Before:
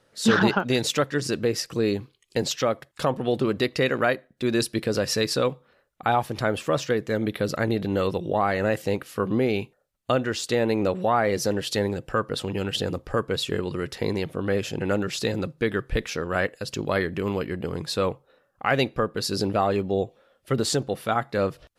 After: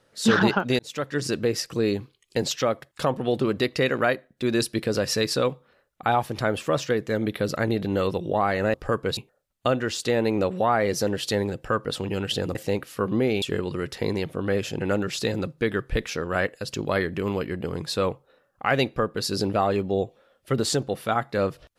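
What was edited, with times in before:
0.79–1.22 fade in
8.74–9.61 swap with 12.99–13.42

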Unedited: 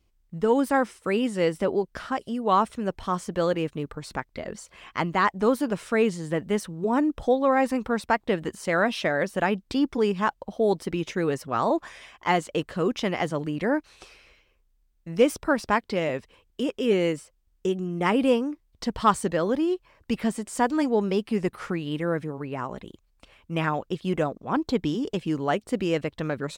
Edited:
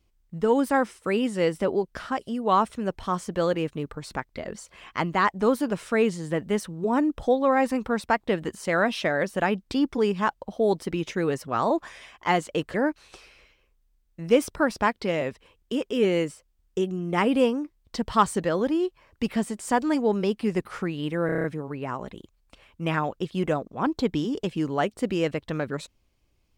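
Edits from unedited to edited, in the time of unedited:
12.74–13.62 cut
22.14 stutter 0.03 s, 7 plays

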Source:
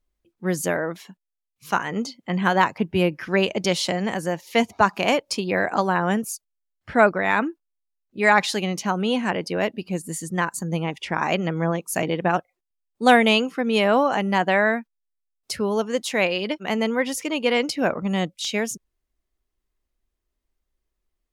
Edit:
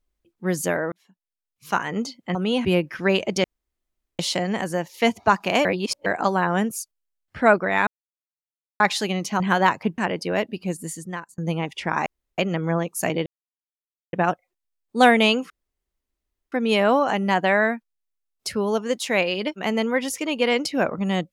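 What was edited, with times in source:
0.92–1.8 fade in
2.35–2.93 swap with 8.93–9.23
3.72 insert room tone 0.75 s
5.18–5.59 reverse
7.4–8.33 mute
10.03–10.63 fade out
11.31 insert room tone 0.32 s
12.19 insert silence 0.87 s
13.56 insert room tone 1.02 s

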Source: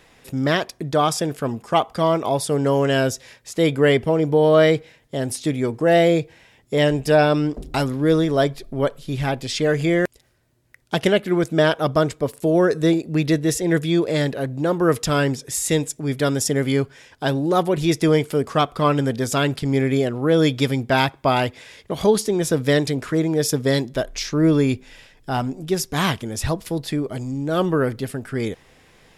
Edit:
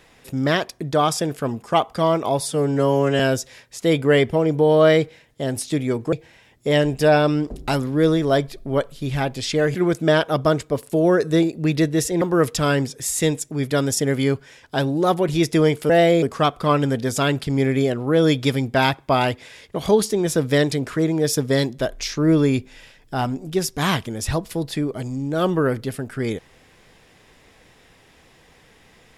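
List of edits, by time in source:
2.4–2.93 stretch 1.5×
5.86–6.19 move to 18.38
9.81–11.25 cut
13.72–14.7 cut

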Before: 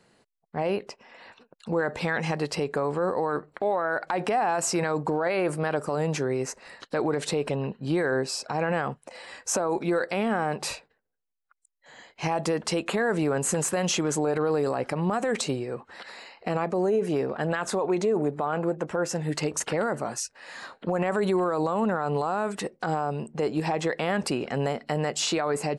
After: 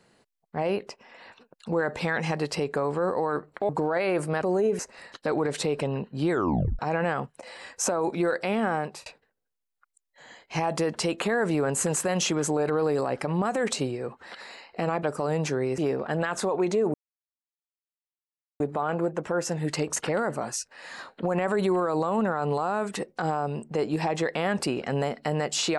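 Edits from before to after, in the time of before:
3.69–4.99 cut
5.72–6.47 swap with 16.71–17.08
7.98 tape stop 0.49 s
10.44–10.74 fade out
18.24 insert silence 1.66 s

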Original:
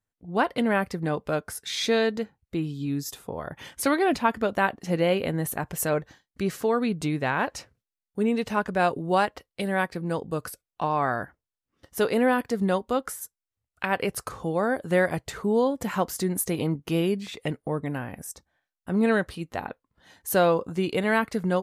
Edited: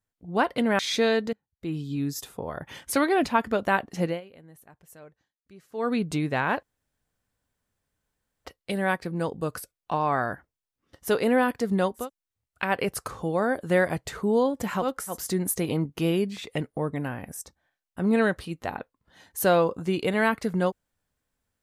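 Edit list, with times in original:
0.79–1.69 cut
2.23–2.67 fade in quadratic, from -24 dB
4.93–6.8 dip -23 dB, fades 0.18 s
7.53–9.35 room tone
12.92–13.23 move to 16.04, crossfade 0.16 s

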